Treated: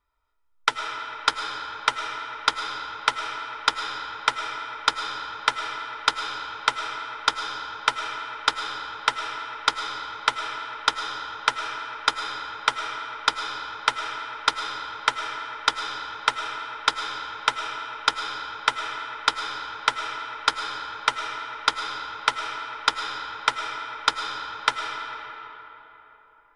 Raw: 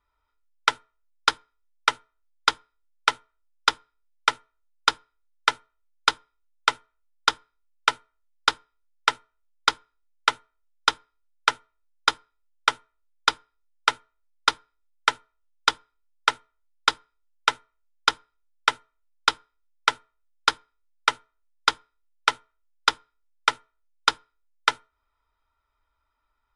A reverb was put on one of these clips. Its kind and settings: digital reverb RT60 3.8 s, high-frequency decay 0.55×, pre-delay 65 ms, DRR 3 dB; gain -1 dB

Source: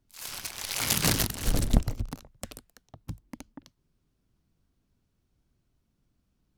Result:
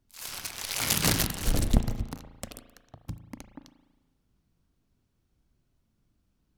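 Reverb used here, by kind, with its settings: spring tank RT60 1.2 s, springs 36 ms, chirp 55 ms, DRR 9 dB

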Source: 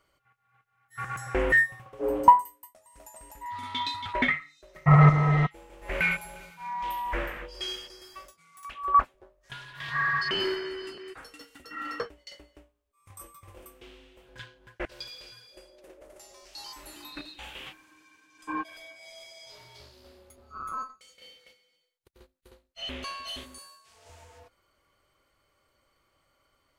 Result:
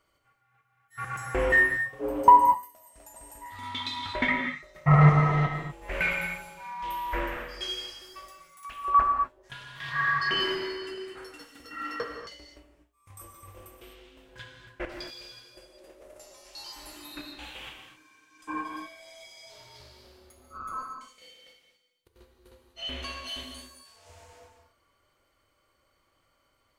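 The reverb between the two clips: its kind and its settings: non-linear reverb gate 0.27 s flat, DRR 2.5 dB; gain -1.5 dB

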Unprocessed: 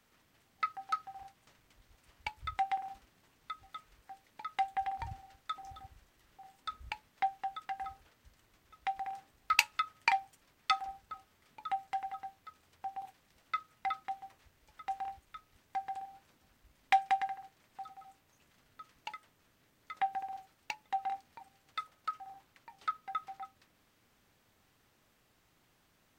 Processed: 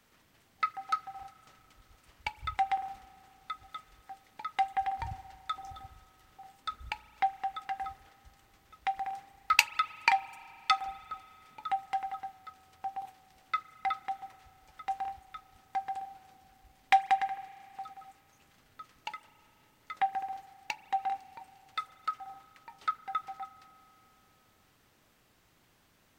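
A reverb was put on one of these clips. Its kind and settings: spring tank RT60 3.1 s, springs 34 ms, chirp 50 ms, DRR 17 dB; gain +3.5 dB

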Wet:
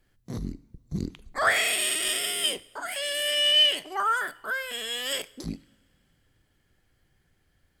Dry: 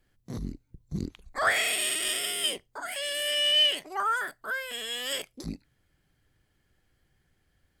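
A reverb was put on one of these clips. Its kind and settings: two-slope reverb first 0.6 s, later 3.1 s, from -19 dB, DRR 17.5 dB; gain +2 dB

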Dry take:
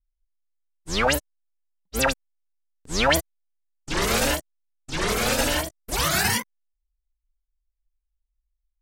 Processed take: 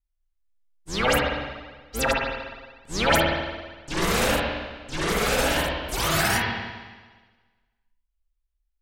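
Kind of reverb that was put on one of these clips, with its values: spring tank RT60 1.4 s, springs 51/57 ms, chirp 25 ms, DRR -3 dB; gain -3.5 dB

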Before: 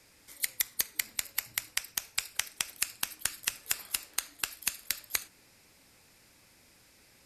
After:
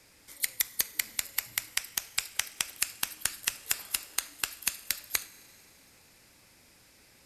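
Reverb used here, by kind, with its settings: Schroeder reverb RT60 2.9 s, combs from 33 ms, DRR 19 dB; gain +1.5 dB

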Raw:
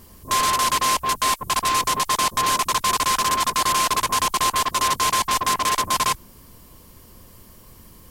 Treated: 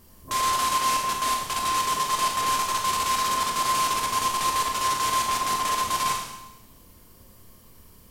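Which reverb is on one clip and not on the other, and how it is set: Schroeder reverb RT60 0.95 s, combs from 26 ms, DRR 0.5 dB; gain -7.5 dB

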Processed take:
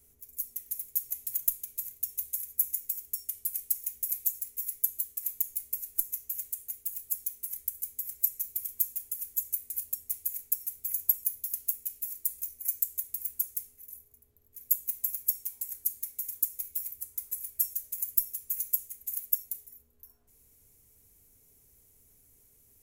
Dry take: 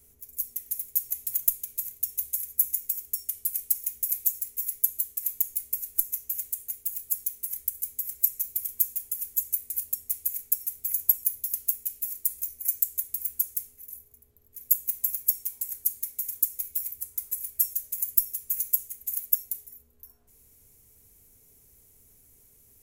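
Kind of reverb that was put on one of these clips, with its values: FDN reverb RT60 0.34 s, high-frequency decay 0.85×, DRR 18.5 dB; gain -4 dB

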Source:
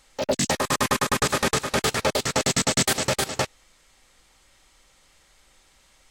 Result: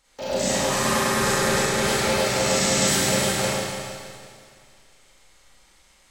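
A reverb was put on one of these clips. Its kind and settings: Schroeder reverb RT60 2.2 s, combs from 32 ms, DRR -9.5 dB; gain -8 dB

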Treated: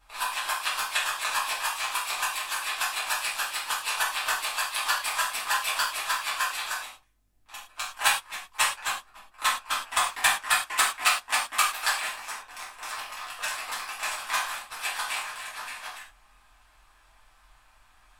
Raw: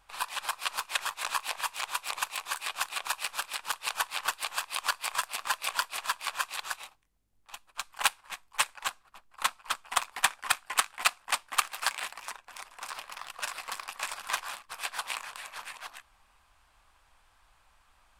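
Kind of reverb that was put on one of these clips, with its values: non-linear reverb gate 0.14 s falling, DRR -8 dB; gain -3.5 dB

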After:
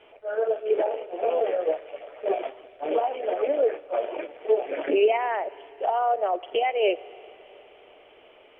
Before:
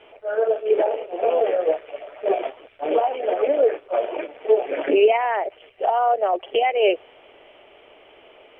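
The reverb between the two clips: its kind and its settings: Schroeder reverb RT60 3.8 s, combs from 26 ms, DRR 19 dB; gain -4.5 dB

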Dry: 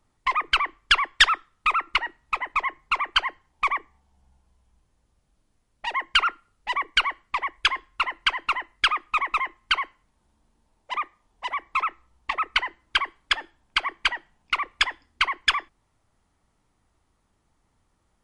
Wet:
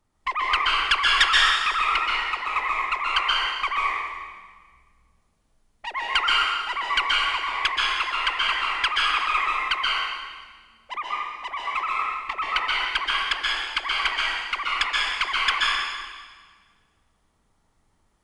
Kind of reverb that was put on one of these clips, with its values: plate-style reverb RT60 1.5 s, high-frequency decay 1×, pre-delay 0.115 s, DRR -4.5 dB; gain -3.5 dB

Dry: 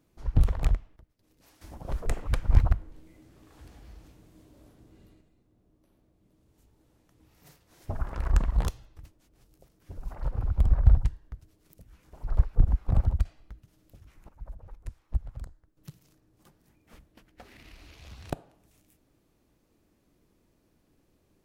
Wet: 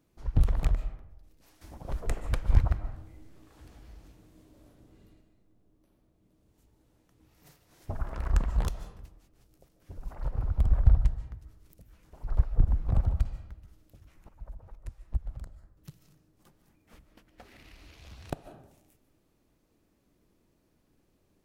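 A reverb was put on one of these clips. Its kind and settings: digital reverb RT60 0.86 s, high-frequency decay 0.5×, pre-delay 0.105 s, DRR 11 dB; gain -2 dB

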